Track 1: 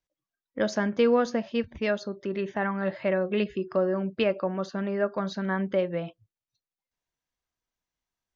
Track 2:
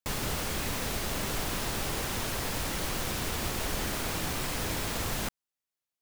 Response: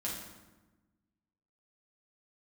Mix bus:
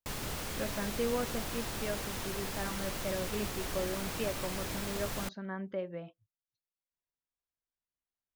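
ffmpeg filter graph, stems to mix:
-filter_complex "[0:a]highshelf=f=4.1k:g=-7.5,volume=-11dB[a];[1:a]volume=-6dB[b];[a][b]amix=inputs=2:normalize=0"

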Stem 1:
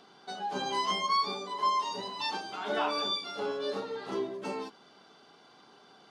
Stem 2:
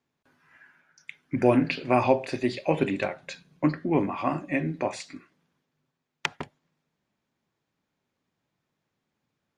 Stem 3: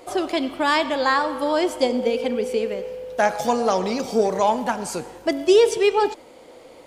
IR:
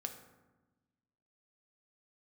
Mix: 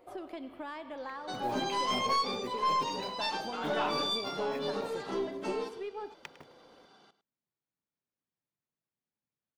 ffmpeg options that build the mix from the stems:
-filter_complex "[0:a]agate=range=-33dB:threshold=-53dB:ratio=3:detection=peak,adelay=1000,volume=0.5dB,asplit=2[a][b];[b]volume=-14.5dB[c];[1:a]acrusher=bits=5:mode=log:mix=0:aa=0.000001,volume=-17.5dB,asplit=2[d][e];[e]volume=-15.5dB[f];[2:a]acompressor=threshold=-24dB:ratio=3,equalizer=f=6.7k:w=0.67:g=-14,volume=-14dB[g];[c][f]amix=inputs=2:normalize=0,aecho=0:1:104:1[h];[a][d][g][h]amix=inputs=4:normalize=0,aeval=exprs='(tanh(12.6*val(0)+0.2)-tanh(0.2))/12.6':c=same"

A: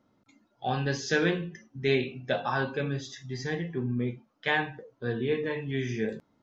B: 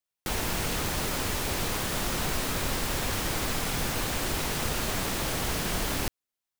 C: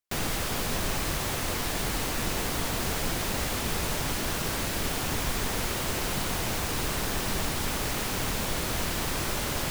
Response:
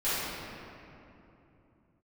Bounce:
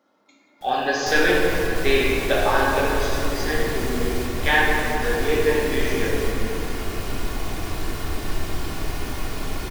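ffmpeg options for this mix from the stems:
-filter_complex "[0:a]highpass=450,volume=3dB,asplit=3[a][b][c];[b]volume=-5.5dB[d];[1:a]alimiter=level_in=2dB:limit=-24dB:level=0:latency=1,volume=-2dB,asoftclip=type=tanh:threshold=-38dB,adelay=350,volume=-11dB[e];[2:a]aecho=1:1:2.8:0.37,adelay=950,volume=-10dB,asplit=2[f][g];[g]volume=-3.5dB[h];[c]apad=whole_len=470055[i];[f][i]sidechaingate=range=-33dB:threshold=-54dB:ratio=16:detection=peak[j];[3:a]atrim=start_sample=2205[k];[d][h]amix=inputs=2:normalize=0[l];[l][k]afir=irnorm=-1:irlink=0[m];[a][e][j][m]amix=inputs=4:normalize=0,lowshelf=f=260:g=4"

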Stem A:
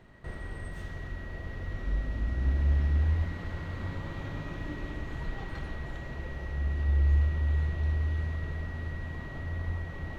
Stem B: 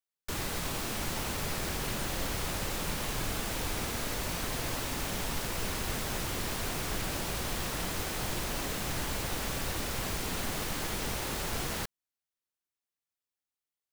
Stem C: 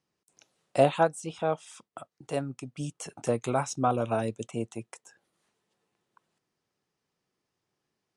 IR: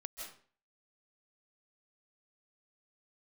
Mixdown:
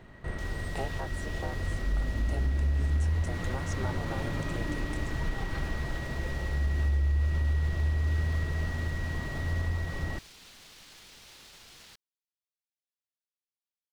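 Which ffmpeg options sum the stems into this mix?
-filter_complex "[0:a]volume=2.5dB,asplit=2[a][b];[b]volume=-8dB[c];[1:a]equalizer=f=4k:w=0.5:g=14,alimiter=limit=-23dB:level=0:latency=1,adelay=100,volume=-20dB[d];[2:a]acompressor=threshold=-34dB:ratio=3,aeval=exprs='val(0)*sin(2*PI*130*n/s)':c=same,volume=-0.5dB[e];[3:a]atrim=start_sample=2205[f];[c][f]afir=irnorm=-1:irlink=0[g];[a][d][e][g]amix=inputs=4:normalize=0,alimiter=limit=-20.5dB:level=0:latency=1:release=185"

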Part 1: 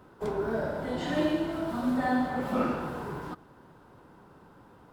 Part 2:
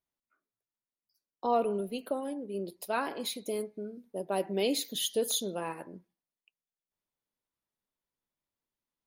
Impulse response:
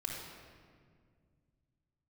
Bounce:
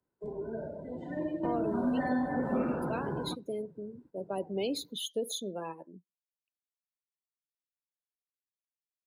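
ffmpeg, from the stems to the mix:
-filter_complex "[0:a]equalizer=f=800:t=o:w=0.33:g=-3,equalizer=f=1.25k:t=o:w=0.33:g=-8,equalizer=f=3.15k:t=o:w=0.33:g=-4,equalizer=f=8k:t=o:w=0.33:g=5,volume=3dB[a];[1:a]volume=-2dB,asplit=2[b][c];[c]apad=whole_len=217084[d];[a][d]sidechaingate=range=-10dB:threshold=-58dB:ratio=16:detection=peak[e];[e][b]amix=inputs=2:normalize=0,afftdn=nr=24:nf=-39,acrossover=split=100|400|7100[f][g][h][i];[f]acompressor=threshold=-56dB:ratio=4[j];[g]acompressor=threshold=-30dB:ratio=4[k];[h]acompressor=threshold=-34dB:ratio=4[l];[i]acompressor=threshold=-46dB:ratio=4[m];[j][k][l][m]amix=inputs=4:normalize=0"

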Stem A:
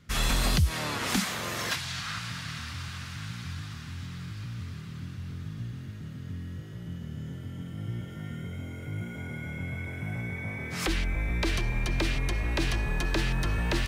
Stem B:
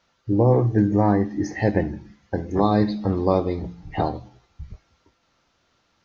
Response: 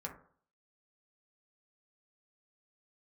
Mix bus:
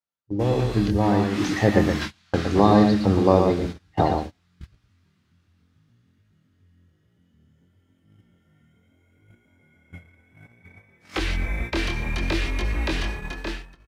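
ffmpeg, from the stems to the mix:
-filter_complex "[0:a]acrossover=split=5600[a][b];[b]acompressor=threshold=-48dB:ratio=4:attack=1:release=60[c];[a][c]amix=inputs=2:normalize=0,equalizer=f=130:t=o:w=0.32:g=-13,flanger=delay=19.5:depth=7.5:speed=0.65,adelay=300,volume=-6dB,asplit=2[d][e];[e]volume=-17dB[f];[1:a]volume=-6.5dB,asplit=2[g][h];[h]volume=-5.5dB[i];[f][i]amix=inputs=2:normalize=0,aecho=0:1:118:1[j];[d][g][j]amix=inputs=3:normalize=0,dynaudnorm=f=230:g=11:m=13dB,highpass=f=45:w=0.5412,highpass=f=45:w=1.3066,agate=range=-25dB:threshold=-28dB:ratio=16:detection=peak"

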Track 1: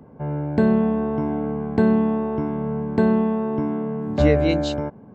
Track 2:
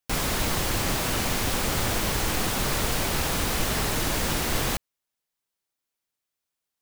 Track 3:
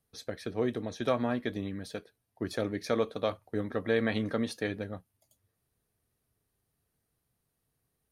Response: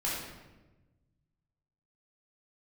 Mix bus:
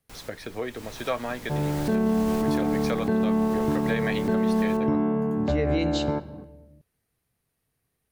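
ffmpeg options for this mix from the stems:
-filter_complex "[0:a]adelay=1300,volume=0.5dB,asplit=2[a][b];[b]volume=-21dB[c];[1:a]volume=-10.5dB,afade=t=in:st=0.64:d=0.4:silence=0.375837,asplit=2[d][e];[e]volume=-22.5dB[f];[2:a]equalizer=f=2.2k:t=o:w=0.77:g=5,acrossover=split=440|3000[g][h][i];[g]acompressor=threshold=-39dB:ratio=6[j];[j][h][i]amix=inputs=3:normalize=0,volume=2dB,asplit=2[k][l];[l]apad=whole_len=300474[m];[d][m]sidechaincompress=threshold=-35dB:ratio=8:attack=5.1:release=502[n];[3:a]atrim=start_sample=2205[o];[c][f]amix=inputs=2:normalize=0[p];[p][o]afir=irnorm=-1:irlink=0[q];[a][n][k][q]amix=inputs=4:normalize=0,alimiter=limit=-15.5dB:level=0:latency=1:release=72"

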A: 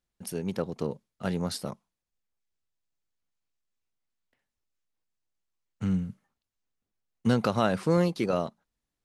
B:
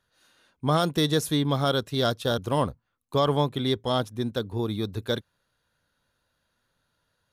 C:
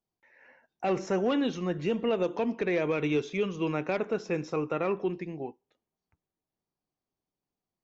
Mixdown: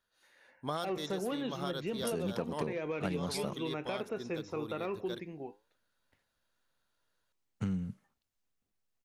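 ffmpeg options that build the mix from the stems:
-filter_complex "[0:a]adelay=1800,volume=1dB[a];[1:a]equalizer=f=110:w=0.52:g=-9.5,volume=-7.5dB[b];[2:a]flanger=delay=7.6:depth=3:regen=81:speed=1.2:shape=sinusoidal,volume=-2dB,asplit=2[c][d];[d]apad=whole_len=322982[e];[b][e]sidechaincompress=threshold=-37dB:ratio=8:attack=11:release=304[f];[a][f][c]amix=inputs=3:normalize=0,acompressor=threshold=-31dB:ratio=6"

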